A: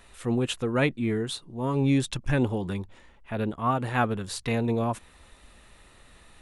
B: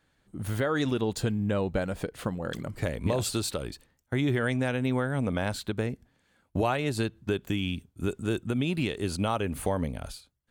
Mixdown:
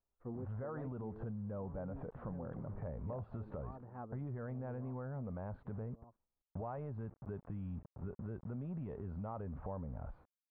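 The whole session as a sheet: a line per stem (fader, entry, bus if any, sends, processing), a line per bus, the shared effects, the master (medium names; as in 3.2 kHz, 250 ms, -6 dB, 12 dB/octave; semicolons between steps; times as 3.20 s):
-12.5 dB, 0.00 s, no send, echo send -20.5 dB, gate -43 dBFS, range -23 dB; auto duck -9 dB, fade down 1.70 s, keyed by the second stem
-2.0 dB, 0.00 s, no send, no echo send, peaking EQ 330 Hz -12.5 dB 0.65 oct; transient shaper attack -7 dB, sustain +6 dB; word length cut 8-bit, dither none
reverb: none
echo: delay 1178 ms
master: saturation -21.5 dBFS, distortion -22 dB; low-pass 1.1 kHz 24 dB/octave; compression, threshold -40 dBFS, peak gain reduction 10.5 dB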